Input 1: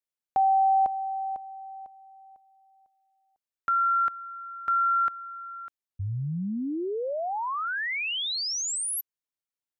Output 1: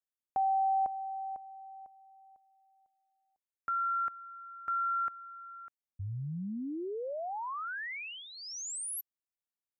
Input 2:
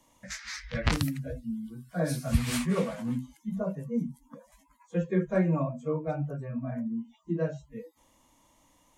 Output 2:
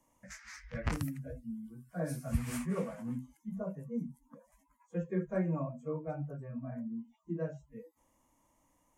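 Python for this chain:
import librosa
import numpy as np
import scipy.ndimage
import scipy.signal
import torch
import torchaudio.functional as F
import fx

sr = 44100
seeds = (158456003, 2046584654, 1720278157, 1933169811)

y = fx.peak_eq(x, sr, hz=3800.0, db=-12.5, octaves=0.88)
y = y * librosa.db_to_amplitude(-7.0)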